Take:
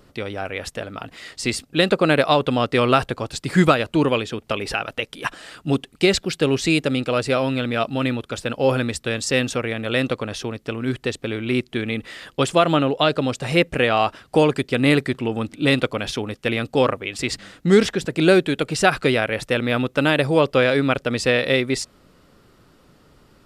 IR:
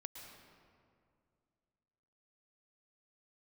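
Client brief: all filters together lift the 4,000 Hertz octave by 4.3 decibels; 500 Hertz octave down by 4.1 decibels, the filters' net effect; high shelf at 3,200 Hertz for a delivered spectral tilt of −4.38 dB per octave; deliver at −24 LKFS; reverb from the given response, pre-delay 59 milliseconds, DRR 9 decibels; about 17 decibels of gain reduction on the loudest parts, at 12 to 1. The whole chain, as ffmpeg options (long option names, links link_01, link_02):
-filter_complex "[0:a]equalizer=frequency=500:width_type=o:gain=-5,highshelf=frequency=3200:gain=-4.5,equalizer=frequency=4000:width_type=o:gain=8.5,acompressor=threshold=-29dB:ratio=12,asplit=2[link_01][link_02];[1:a]atrim=start_sample=2205,adelay=59[link_03];[link_02][link_03]afir=irnorm=-1:irlink=0,volume=-5dB[link_04];[link_01][link_04]amix=inputs=2:normalize=0,volume=9dB"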